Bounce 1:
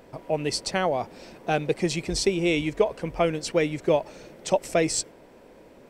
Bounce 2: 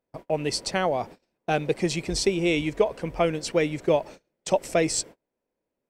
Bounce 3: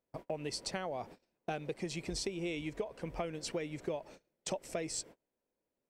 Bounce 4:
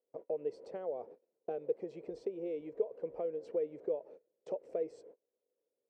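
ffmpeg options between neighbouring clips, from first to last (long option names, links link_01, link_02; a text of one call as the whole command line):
ffmpeg -i in.wav -af "agate=range=-33dB:threshold=-39dB:ratio=16:detection=peak" out.wav
ffmpeg -i in.wav -af "acompressor=threshold=-30dB:ratio=6,volume=-5dB" out.wav
ffmpeg -i in.wav -af "bandpass=frequency=470:width_type=q:width=5.5:csg=0,volume=8dB" out.wav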